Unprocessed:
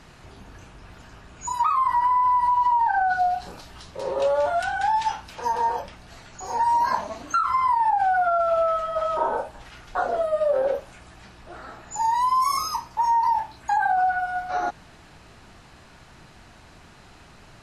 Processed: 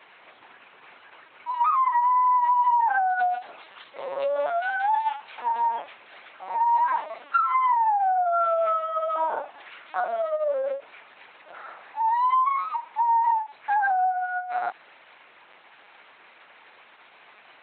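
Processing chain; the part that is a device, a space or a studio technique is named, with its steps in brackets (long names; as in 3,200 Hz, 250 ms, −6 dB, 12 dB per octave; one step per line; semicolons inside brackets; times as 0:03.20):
talking toy (linear-prediction vocoder at 8 kHz pitch kept; high-pass filter 630 Hz 12 dB per octave; parametric band 2,200 Hz +5.5 dB 0.36 octaves)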